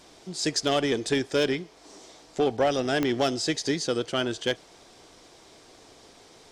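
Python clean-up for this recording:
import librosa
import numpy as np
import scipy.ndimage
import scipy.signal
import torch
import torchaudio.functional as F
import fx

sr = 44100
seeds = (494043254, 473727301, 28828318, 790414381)

y = fx.fix_declip(x, sr, threshold_db=-15.5)
y = fx.fix_declick_ar(y, sr, threshold=10.0)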